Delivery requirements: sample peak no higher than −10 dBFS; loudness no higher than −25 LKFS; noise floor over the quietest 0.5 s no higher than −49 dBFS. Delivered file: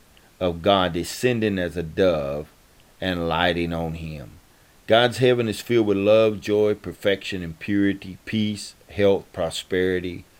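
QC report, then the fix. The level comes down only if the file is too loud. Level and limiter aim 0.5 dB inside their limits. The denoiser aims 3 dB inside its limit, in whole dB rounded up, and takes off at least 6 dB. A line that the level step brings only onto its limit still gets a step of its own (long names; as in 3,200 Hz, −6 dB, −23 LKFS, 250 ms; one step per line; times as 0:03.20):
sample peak −4.0 dBFS: out of spec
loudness −22.5 LKFS: out of spec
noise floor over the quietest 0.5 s −54 dBFS: in spec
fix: level −3 dB
brickwall limiter −10.5 dBFS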